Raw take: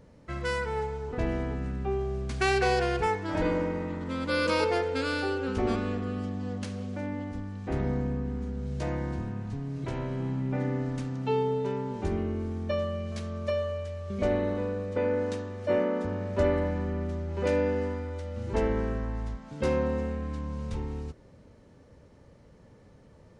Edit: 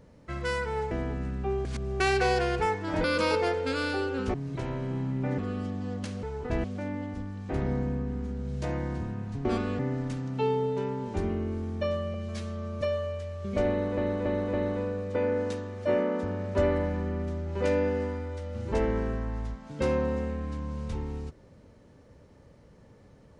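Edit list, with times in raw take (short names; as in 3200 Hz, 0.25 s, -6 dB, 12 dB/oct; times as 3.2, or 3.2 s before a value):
0.91–1.32 move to 6.82
2.06–2.41 reverse
3.45–4.33 cut
5.63–5.97 swap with 9.63–10.67
13.02–13.47 stretch 1.5×
14.35–14.63 loop, 4 plays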